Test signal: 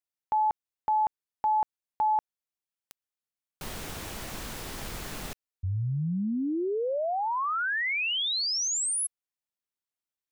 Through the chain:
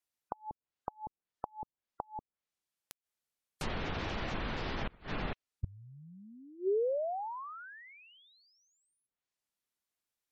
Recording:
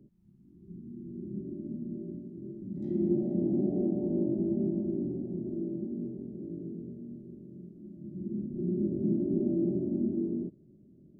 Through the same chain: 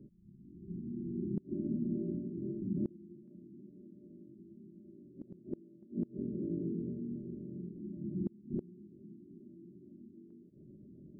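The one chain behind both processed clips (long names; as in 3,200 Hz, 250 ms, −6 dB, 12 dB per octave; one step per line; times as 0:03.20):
treble cut that deepens with the level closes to 310 Hz, closed at −26 dBFS
gate on every frequency bin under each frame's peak −30 dB strong
gate with flip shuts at −27 dBFS, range −26 dB
level +3 dB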